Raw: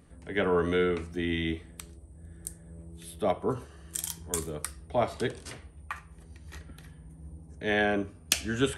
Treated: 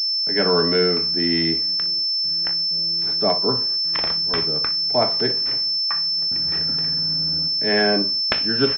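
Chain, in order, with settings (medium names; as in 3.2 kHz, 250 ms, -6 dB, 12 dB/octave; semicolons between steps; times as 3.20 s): gate with hold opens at -40 dBFS; high-pass 130 Hz 24 dB/octave; 6.22–7.49 s: waveshaping leveller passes 3; on a send: early reflections 24 ms -12 dB, 39 ms -15.5 dB, 60 ms -17 dB; on the sum: class-D stage that switches slowly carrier 5.3 kHz; trim +6.5 dB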